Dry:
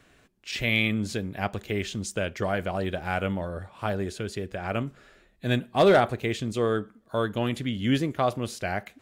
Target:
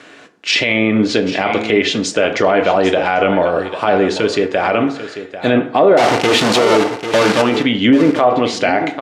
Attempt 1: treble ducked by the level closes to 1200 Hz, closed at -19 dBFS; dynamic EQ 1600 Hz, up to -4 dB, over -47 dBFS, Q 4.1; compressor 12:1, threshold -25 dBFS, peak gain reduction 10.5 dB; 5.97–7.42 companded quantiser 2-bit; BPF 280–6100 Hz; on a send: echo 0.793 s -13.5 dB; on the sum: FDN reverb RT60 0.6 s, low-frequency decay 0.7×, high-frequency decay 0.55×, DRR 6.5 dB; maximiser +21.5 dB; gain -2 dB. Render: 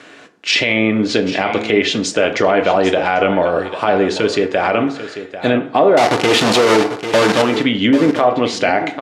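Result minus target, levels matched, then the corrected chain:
compressor: peak gain reduction +10.5 dB
treble ducked by the level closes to 1200 Hz, closed at -19 dBFS; dynamic EQ 1600 Hz, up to -4 dB, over -47 dBFS, Q 4.1; 5.97–7.42 companded quantiser 2-bit; BPF 280–6100 Hz; on a send: echo 0.793 s -13.5 dB; on the sum: FDN reverb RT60 0.6 s, low-frequency decay 0.7×, high-frequency decay 0.55×, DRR 6.5 dB; maximiser +21.5 dB; gain -2 dB

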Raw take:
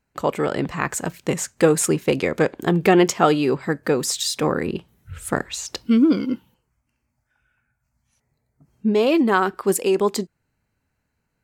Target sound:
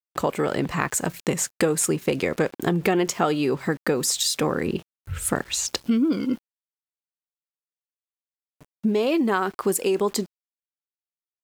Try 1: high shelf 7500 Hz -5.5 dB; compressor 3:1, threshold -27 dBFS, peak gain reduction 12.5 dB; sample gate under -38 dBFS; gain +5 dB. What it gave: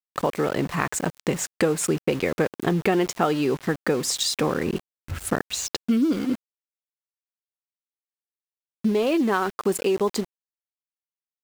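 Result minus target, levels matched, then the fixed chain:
sample gate: distortion +12 dB; 8000 Hz band -3.0 dB
high shelf 7500 Hz +4.5 dB; compressor 3:1, threshold -27 dBFS, peak gain reduction 12.5 dB; sample gate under -49 dBFS; gain +5 dB

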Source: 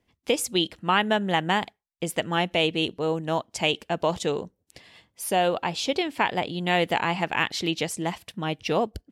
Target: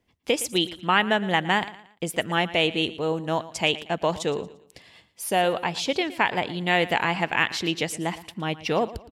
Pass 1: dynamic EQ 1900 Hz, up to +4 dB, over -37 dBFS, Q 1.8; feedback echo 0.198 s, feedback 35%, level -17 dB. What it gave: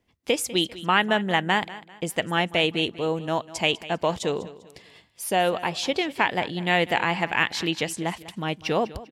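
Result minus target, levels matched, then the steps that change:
echo 83 ms late
change: feedback echo 0.115 s, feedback 35%, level -17 dB

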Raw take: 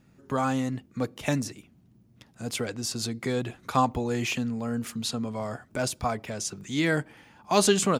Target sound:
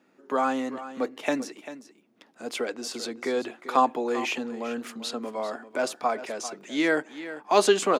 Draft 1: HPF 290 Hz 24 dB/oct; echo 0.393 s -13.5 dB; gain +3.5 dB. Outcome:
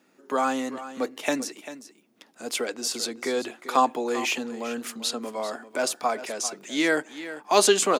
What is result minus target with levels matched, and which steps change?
8000 Hz band +7.0 dB
add after HPF: high shelf 4500 Hz -11.5 dB

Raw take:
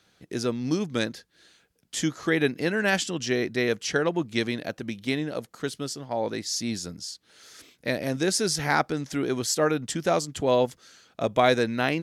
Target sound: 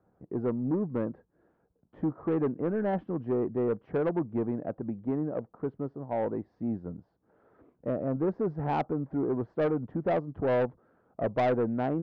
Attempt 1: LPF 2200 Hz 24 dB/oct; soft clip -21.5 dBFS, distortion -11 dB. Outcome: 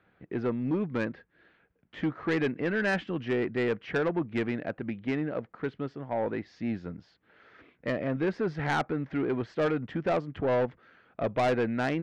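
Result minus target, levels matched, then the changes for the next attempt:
2000 Hz band +10.5 dB
change: LPF 1000 Hz 24 dB/oct

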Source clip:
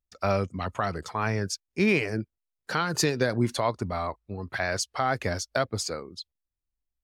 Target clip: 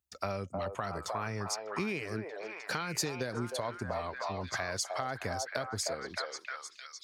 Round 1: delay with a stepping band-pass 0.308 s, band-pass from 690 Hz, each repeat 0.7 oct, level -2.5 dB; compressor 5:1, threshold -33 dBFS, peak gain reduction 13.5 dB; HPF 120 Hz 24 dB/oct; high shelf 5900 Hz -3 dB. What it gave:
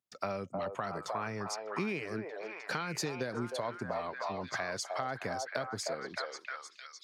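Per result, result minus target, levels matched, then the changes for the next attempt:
8000 Hz band -4.0 dB; 125 Hz band -2.5 dB
change: high shelf 5900 Hz +6 dB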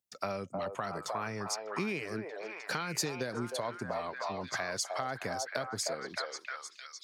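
125 Hz band -3.5 dB
change: HPF 52 Hz 24 dB/oct

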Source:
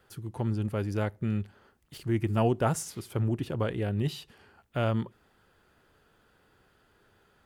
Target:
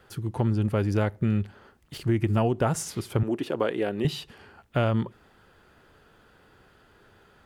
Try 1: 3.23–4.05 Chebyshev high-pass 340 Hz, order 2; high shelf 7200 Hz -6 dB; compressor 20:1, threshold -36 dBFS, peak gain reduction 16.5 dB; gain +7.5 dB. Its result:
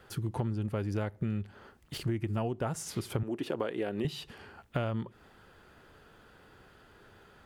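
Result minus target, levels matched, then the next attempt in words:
compressor: peak gain reduction +9 dB
3.23–4.05 Chebyshev high-pass 340 Hz, order 2; high shelf 7200 Hz -6 dB; compressor 20:1, threshold -26.5 dBFS, peak gain reduction 7.5 dB; gain +7.5 dB

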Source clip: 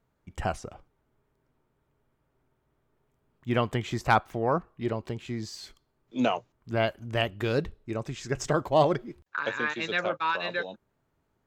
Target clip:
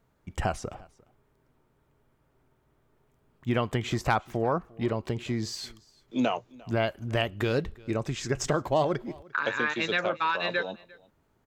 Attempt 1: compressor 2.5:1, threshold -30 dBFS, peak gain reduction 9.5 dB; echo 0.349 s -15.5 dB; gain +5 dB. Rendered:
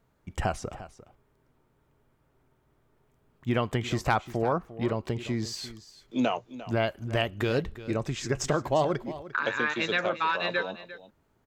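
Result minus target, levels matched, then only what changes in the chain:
echo-to-direct +8.5 dB
change: echo 0.349 s -24 dB

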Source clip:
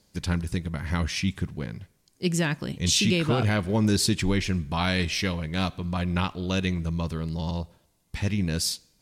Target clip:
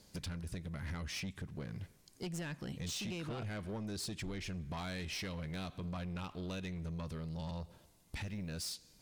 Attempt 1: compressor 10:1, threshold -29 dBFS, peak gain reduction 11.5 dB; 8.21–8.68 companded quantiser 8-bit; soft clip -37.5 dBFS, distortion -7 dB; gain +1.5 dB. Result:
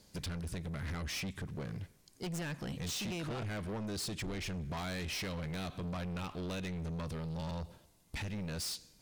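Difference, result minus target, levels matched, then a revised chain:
compressor: peak gain reduction -6.5 dB
compressor 10:1, threshold -36 dBFS, peak gain reduction 18 dB; 8.21–8.68 companded quantiser 8-bit; soft clip -37.5 dBFS, distortion -12 dB; gain +1.5 dB

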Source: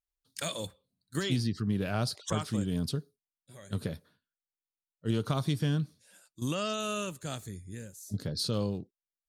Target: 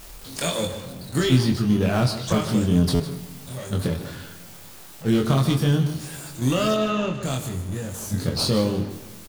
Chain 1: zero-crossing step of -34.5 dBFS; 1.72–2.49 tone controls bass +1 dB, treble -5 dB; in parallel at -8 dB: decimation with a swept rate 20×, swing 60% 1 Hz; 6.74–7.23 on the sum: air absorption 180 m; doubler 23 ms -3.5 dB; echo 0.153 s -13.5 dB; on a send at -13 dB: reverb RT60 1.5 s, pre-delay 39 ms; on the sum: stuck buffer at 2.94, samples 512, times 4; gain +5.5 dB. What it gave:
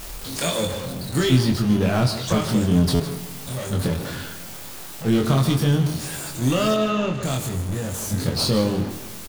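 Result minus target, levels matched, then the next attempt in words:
zero-crossing step: distortion +6 dB
zero-crossing step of -41.5 dBFS; 1.72–2.49 tone controls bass +1 dB, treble -5 dB; in parallel at -8 dB: decimation with a swept rate 20×, swing 60% 1 Hz; 6.74–7.23 on the sum: air absorption 180 m; doubler 23 ms -3.5 dB; echo 0.153 s -13.5 dB; on a send at -13 dB: reverb RT60 1.5 s, pre-delay 39 ms; on the sum: stuck buffer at 2.94, samples 512, times 4; gain +5.5 dB

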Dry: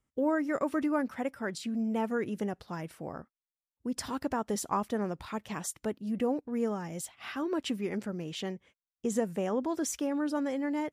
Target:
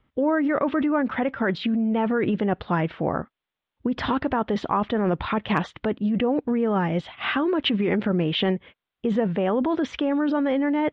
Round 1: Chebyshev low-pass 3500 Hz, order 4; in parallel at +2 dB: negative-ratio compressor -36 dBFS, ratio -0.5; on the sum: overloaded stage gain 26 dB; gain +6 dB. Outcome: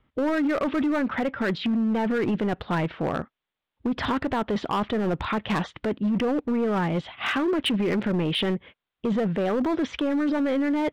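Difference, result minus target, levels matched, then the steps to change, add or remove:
overloaded stage: distortion +36 dB
change: overloaded stage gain 15.5 dB

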